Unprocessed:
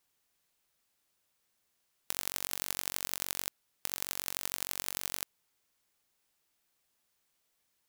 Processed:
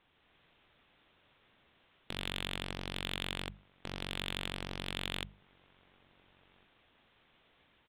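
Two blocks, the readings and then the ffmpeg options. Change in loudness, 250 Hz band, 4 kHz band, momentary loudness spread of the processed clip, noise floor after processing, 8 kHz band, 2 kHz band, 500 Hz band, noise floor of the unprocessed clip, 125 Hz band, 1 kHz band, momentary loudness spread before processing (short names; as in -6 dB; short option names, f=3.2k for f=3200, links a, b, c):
-4.0 dB, +9.0 dB, +2.5 dB, 8 LU, -70 dBFS, -17.5 dB, +2.0 dB, +4.5 dB, -78 dBFS, +12.5 dB, +0.5 dB, 5 LU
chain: -filter_complex "[0:a]lowshelf=f=320:g=5.5,bandreject=f=50:t=h:w=6,bandreject=f=100:t=h:w=6,bandreject=f=150:t=h:w=6,bandreject=f=200:t=h:w=6,dynaudnorm=f=150:g=3:m=4dB,aresample=8000,volume=30dB,asoftclip=hard,volume=-30dB,aresample=44100,asplit=2[a][b];[b]adelay=1399,volume=-30dB,highshelf=f=4k:g=-31.5[c];[a][c]amix=inputs=2:normalize=0,asplit=2[d][e];[e]aeval=exprs='0.0106*(abs(mod(val(0)/0.0106+3,4)-2)-1)':c=same,volume=-3dB[f];[d][f]amix=inputs=2:normalize=0,volume=7dB"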